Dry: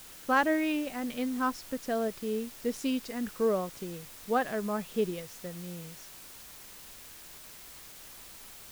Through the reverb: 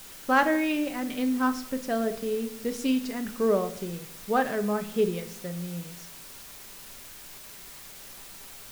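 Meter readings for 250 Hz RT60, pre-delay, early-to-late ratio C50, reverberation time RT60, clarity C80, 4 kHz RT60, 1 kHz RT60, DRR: 1.0 s, 5 ms, 14.0 dB, 0.65 s, 17.0 dB, 0.55 s, 0.60 s, 7.0 dB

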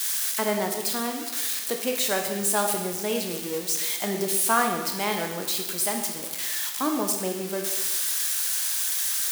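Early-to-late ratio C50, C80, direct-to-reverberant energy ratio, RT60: 5.5 dB, 7.5 dB, 3.0 dB, 1.1 s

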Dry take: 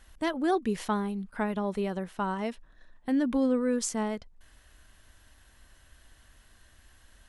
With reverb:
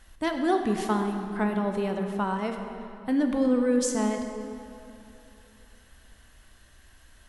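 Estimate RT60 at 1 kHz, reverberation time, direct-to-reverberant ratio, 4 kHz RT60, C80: 2.8 s, 2.9 s, 4.0 dB, 1.9 s, 6.0 dB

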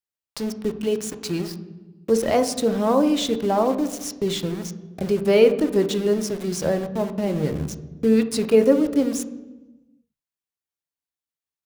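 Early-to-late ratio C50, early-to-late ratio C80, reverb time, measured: 12.0 dB, 14.5 dB, 1.2 s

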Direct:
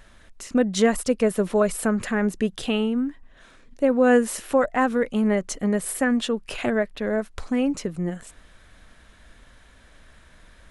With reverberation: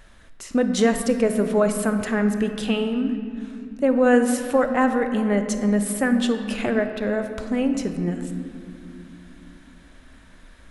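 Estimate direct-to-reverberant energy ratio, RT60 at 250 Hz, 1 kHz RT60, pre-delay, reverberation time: 7.0 dB, 4.5 s, 2.1 s, 27 ms, 2.5 s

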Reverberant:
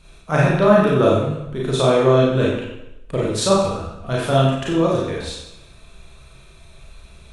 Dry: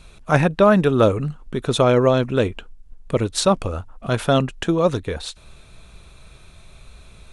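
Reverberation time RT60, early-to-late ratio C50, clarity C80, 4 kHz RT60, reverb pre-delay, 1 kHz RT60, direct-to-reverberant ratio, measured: 0.85 s, -0.5 dB, 3.5 dB, 0.80 s, 31 ms, 0.85 s, -5.5 dB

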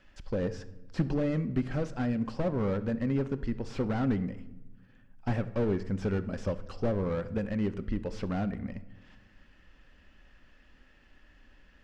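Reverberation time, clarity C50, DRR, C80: 1.1 s, 15.0 dB, 11.0 dB, 18.0 dB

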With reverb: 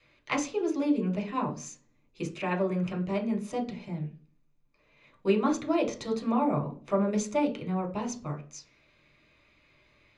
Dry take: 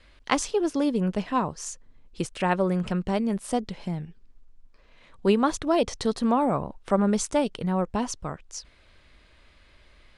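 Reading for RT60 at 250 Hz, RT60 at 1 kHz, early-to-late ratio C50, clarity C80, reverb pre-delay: 0.55 s, 0.35 s, 13.0 dB, 18.0 dB, 3 ms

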